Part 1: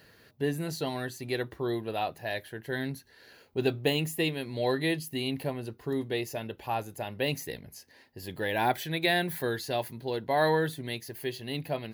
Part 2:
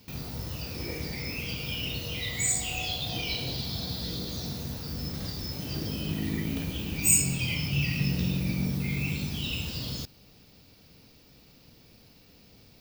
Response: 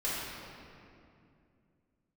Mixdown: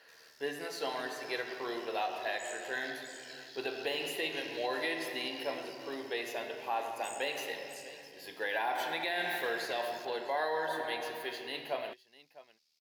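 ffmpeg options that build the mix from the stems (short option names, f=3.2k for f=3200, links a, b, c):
-filter_complex "[0:a]highpass=640,aemphasis=mode=reproduction:type=cd,volume=-1.5dB,asplit=3[a][b][c];[b]volume=-8dB[d];[c]volume=-16.5dB[e];[1:a]acompressor=threshold=-31dB:ratio=6,bandpass=f=6k:t=q:w=1.2:csg=0,tremolo=f=77:d=0.857,volume=-8dB,asplit=2[f][g];[g]volume=-7dB[h];[2:a]atrim=start_sample=2205[i];[d][i]afir=irnorm=-1:irlink=0[j];[e][h]amix=inputs=2:normalize=0,aecho=0:1:654:1[k];[a][f][j][k]amix=inputs=4:normalize=0,alimiter=limit=-24dB:level=0:latency=1:release=96"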